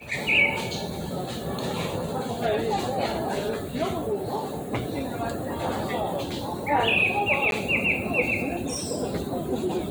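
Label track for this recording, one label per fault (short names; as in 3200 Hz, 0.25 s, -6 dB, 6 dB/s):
7.510000	7.520000	gap 12 ms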